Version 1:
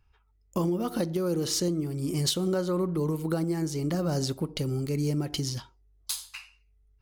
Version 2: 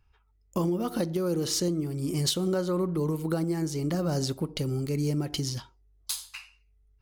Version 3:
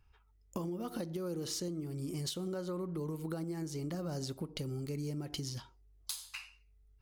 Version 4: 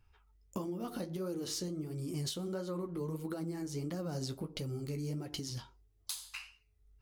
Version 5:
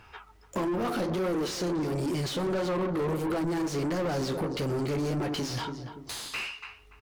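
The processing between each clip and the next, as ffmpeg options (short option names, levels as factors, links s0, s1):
-af anull
-af "acompressor=threshold=0.0126:ratio=3,volume=0.891"
-af "flanger=delay=9:depth=7:regen=-37:speed=1.5:shape=sinusoidal,volume=1.58"
-filter_complex "[0:a]asplit=2[s0][s1];[s1]adelay=287,lowpass=f=980:p=1,volume=0.224,asplit=2[s2][s3];[s3]adelay=287,lowpass=f=980:p=1,volume=0.35,asplit=2[s4][s5];[s5]adelay=287,lowpass=f=980:p=1,volume=0.35[s6];[s0][s2][s4][s6]amix=inputs=4:normalize=0,asoftclip=type=tanh:threshold=0.0316,asplit=2[s7][s8];[s8]highpass=f=720:p=1,volume=22.4,asoftclip=type=tanh:threshold=0.0316[s9];[s7][s9]amix=inputs=2:normalize=0,lowpass=f=1900:p=1,volume=0.501,volume=2.37"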